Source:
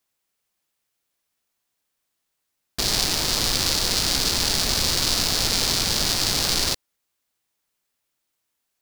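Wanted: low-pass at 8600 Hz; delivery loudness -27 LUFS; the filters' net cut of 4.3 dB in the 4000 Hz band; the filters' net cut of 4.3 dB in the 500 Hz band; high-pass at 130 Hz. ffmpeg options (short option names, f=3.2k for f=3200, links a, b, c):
-af "highpass=130,lowpass=8.6k,equalizer=f=500:t=o:g=-5.5,equalizer=f=4k:t=o:g=-5,volume=-3dB"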